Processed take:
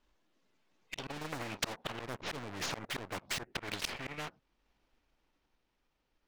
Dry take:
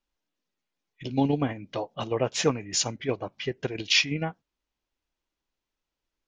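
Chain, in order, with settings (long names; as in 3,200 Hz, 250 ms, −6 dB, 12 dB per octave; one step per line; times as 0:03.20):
gain on one half-wave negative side −3 dB
source passing by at 0:02.27, 25 m/s, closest 21 metres
low-pass filter 2,600 Hz 6 dB per octave
treble cut that deepens with the level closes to 320 Hz, closed at −26.5 dBFS
volume swells 622 ms
leveller curve on the samples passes 2
every bin compressed towards the loudest bin 4 to 1
level +13 dB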